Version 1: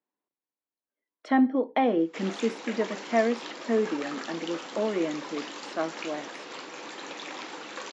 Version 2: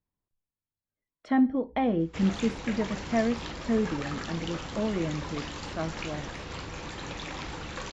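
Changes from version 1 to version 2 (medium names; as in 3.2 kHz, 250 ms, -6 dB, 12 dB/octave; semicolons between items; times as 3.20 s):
speech -4.5 dB; master: remove high-pass 270 Hz 24 dB/octave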